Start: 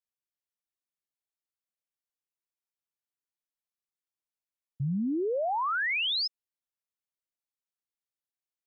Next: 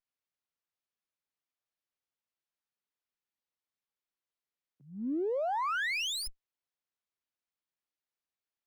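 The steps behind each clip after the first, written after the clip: steep high-pass 240 Hz 36 dB/octave; sliding maximum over 5 samples; trim -2.5 dB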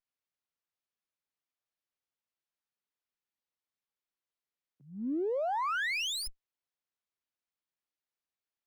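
no audible change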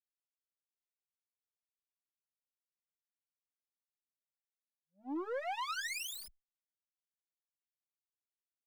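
power-law waveshaper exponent 3; endless flanger 3 ms -0.62 Hz; trim +1 dB

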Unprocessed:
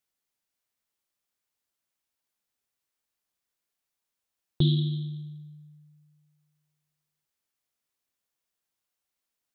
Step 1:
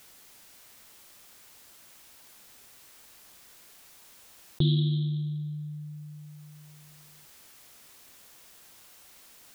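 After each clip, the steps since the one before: level flattener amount 50%; trim -2 dB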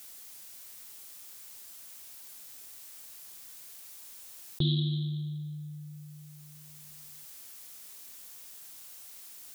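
treble shelf 4.3 kHz +11.5 dB; trim -4 dB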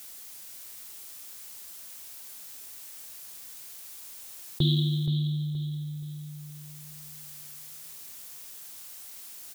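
feedback delay 474 ms, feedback 34%, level -10.5 dB; trim +3.5 dB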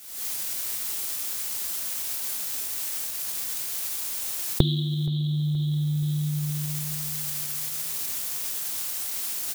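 recorder AGC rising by 68 dB/s; trim -1.5 dB

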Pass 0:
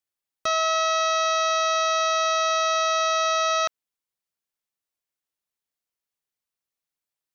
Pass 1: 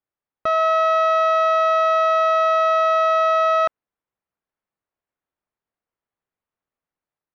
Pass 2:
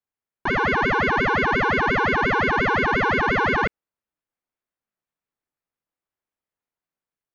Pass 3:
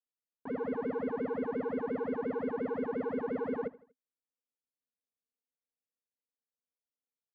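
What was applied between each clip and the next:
low-pass 1.5 kHz 12 dB/octave; level rider gain up to 3 dB; trim +4.5 dB
ring modulator with a swept carrier 540 Hz, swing 70%, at 5.7 Hz
two resonant band-passes 350 Hz, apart 0.85 oct; feedback delay 80 ms, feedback 46%, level -20 dB; trim -4 dB

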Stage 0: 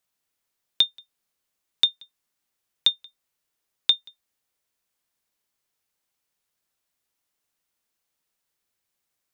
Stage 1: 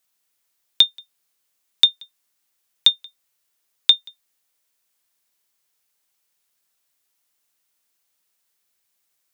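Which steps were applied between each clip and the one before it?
tilt EQ +1.5 dB/octave; trim +3 dB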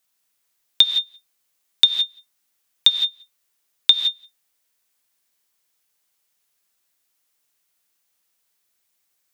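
gated-style reverb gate 190 ms rising, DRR 5.5 dB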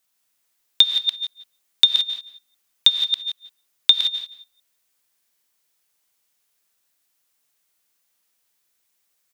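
chunks repeated in reverse 158 ms, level -8 dB; echo from a far wall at 30 m, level -14 dB

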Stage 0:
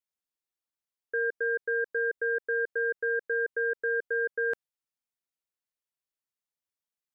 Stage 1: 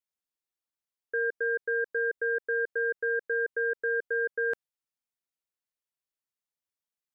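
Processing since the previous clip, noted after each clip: no audible change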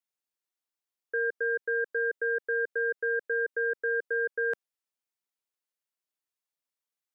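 high-pass 230 Hz

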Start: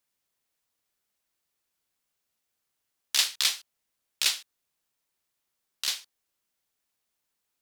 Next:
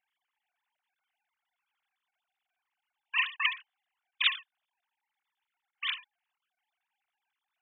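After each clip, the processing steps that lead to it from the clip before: formants replaced by sine waves; trim -3 dB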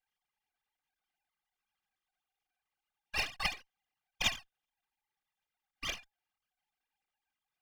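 comb filter that takes the minimum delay 2.5 ms; trim -3.5 dB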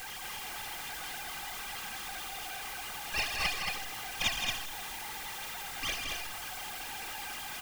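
jump at every zero crossing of -33 dBFS; loudspeakers at several distances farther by 56 m -8 dB, 77 m -4 dB; trim -1.5 dB

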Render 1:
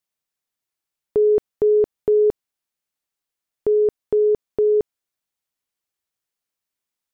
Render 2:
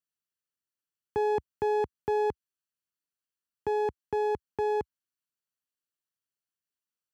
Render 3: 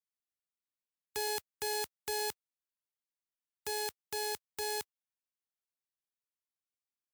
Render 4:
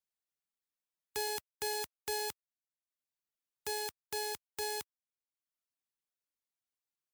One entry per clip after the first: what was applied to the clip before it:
comb filter that takes the minimum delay 0.67 ms; high-pass 70 Hz 24 dB/octave; trim -8 dB
formants flattened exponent 0.1; trim -8.5 dB
reverb removal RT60 0.7 s

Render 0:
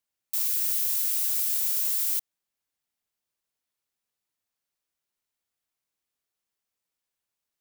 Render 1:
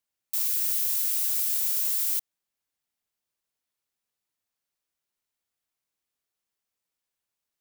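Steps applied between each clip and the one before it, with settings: no audible change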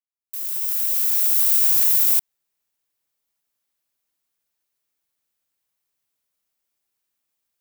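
fade-in on the opening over 1.54 s; treble shelf 12 kHz +7.5 dB; polarity switched at an audio rate 180 Hz; trim +3.5 dB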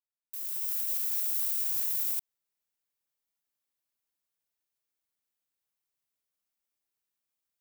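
peak limiter -12 dBFS, peak gain reduction 8.5 dB; trim -8.5 dB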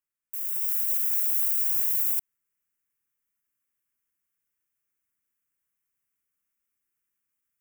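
static phaser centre 1.7 kHz, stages 4; trim +5.5 dB

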